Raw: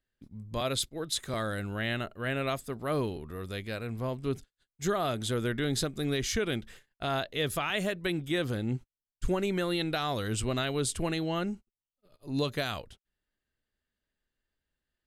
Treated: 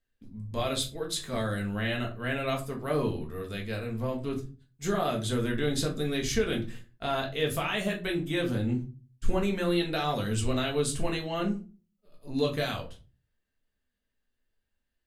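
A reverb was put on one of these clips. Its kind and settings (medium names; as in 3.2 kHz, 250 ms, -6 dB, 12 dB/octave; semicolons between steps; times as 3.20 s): simulated room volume 160 m³, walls furnished, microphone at 1.6 m; trim -2.5 dB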